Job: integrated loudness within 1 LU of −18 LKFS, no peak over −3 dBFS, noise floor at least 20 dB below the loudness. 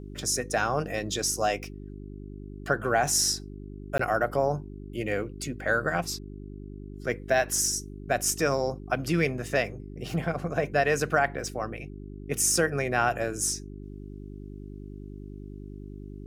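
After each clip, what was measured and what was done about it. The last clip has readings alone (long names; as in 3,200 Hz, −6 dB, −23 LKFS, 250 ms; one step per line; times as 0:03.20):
number of dropouts 1; longest dropout 14 ms; mains hum 50 Hz; hum harmonics up to 400 Hz; level of the hum −38 dBFS; integrated loudness −27.5 LKFS; sample peak −10.0 dBFS; target loudness −18.0 LKFS
→ repair the gap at 0:03.98, 14 ms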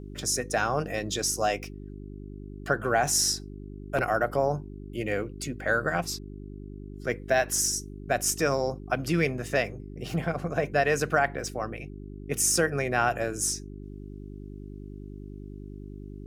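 number of dropouts 0; mains hum 50 Hz; hum harmonics up to 400 Hz; level of the hum −38 dBFS
→ hum removal 50 Hz, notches 8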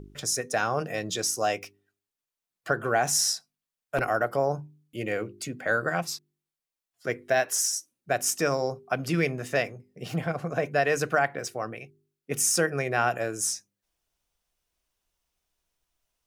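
mains hum none found; integrated loudness −27.5 LKFS; sample peak −10.5 dBFS; target loudness −18.0 LKFS
→ level +9.5 dB
brickwall limiter −3 dBFS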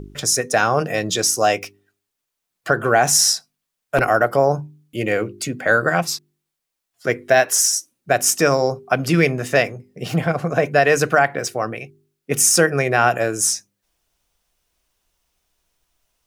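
integrated loudness −18.5 LKFS; sample peak −3.0 dBFS; background noise floor −80 dBFS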